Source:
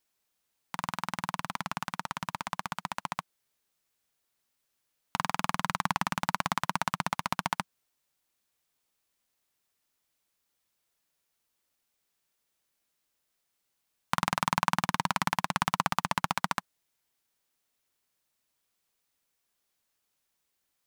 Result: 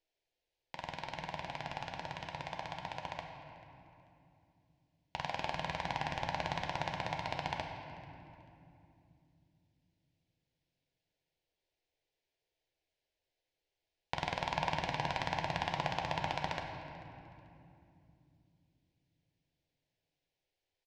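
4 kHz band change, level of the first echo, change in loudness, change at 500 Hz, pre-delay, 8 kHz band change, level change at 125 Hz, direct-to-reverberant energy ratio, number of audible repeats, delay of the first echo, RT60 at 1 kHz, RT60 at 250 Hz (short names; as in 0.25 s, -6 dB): -5.0 dB, -21.0 dB, -7.0 dB, +1.5 dB, 4 ms, -15.0 dB, -3.5 dB, 1.5 dB, 1, 0.439 s, 2.5 s, 4.6 s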